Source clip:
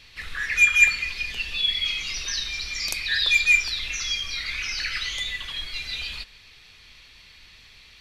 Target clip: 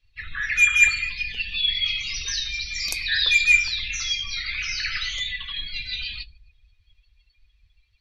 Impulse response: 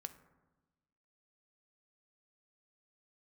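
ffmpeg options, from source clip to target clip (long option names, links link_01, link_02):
-filter_complex "[1:a]atrim=start_sample=2205,asetrate=25578,aresample=44100[link_01];[0:a][link_01]afir=irnorm=-1:irlink=0,afftdn=noise_reduction=28:noise_floor=-41,volume=3dB"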